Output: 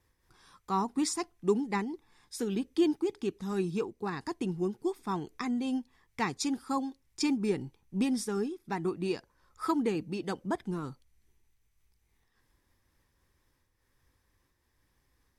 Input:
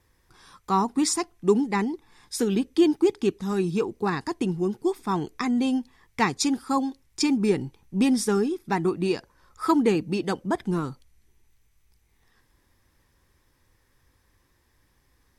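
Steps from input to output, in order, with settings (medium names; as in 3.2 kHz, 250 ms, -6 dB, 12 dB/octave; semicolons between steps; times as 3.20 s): random flutter of the level, depth 60%; trim -5 dB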